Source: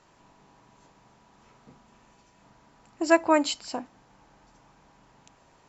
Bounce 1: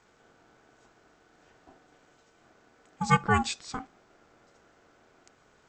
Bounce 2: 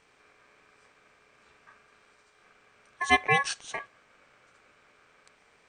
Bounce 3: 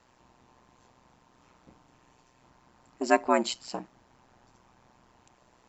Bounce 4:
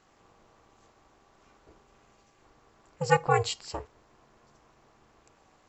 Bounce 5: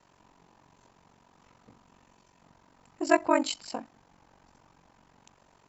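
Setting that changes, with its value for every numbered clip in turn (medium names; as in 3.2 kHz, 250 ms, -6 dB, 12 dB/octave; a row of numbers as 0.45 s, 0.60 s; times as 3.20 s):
ring modulator, frequency: 520 Hz, 1.4 kHz, 62 Hz, 180 Hz, 23 Hz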